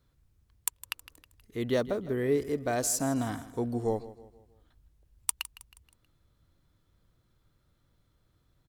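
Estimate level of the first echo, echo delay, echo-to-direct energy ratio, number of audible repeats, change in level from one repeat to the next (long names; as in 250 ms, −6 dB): −16.5 dB, 159 ms, −15.5 dB, 3, −7.0 dB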